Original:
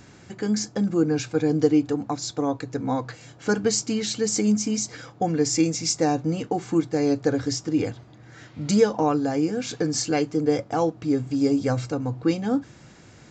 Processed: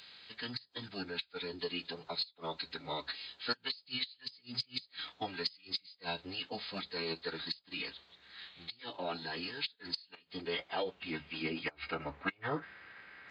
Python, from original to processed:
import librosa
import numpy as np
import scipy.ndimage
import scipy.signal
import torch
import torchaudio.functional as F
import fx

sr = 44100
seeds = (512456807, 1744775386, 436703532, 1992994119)

p1 = fx.rider(x, sr, range_db=10, speed_s=0.5)
p2 = x + (p1 * 10.0 ** (1.5 / 20.0))
p3 = fx.filter_sweep_bandpass(p2, sr, from_hz=4000.0, to_hz=1800.0, start_s=9.93, end_s=12.63, q=2.4)
p4 = fx.gate_flip(p3, sr, shuts_db=-21.0, range_db=-30)
p5 = fx.pitch_keep_formants(p4, sr, semitones=-9.5)
y = p5 * 10.0 ** (2.0 / 20.0)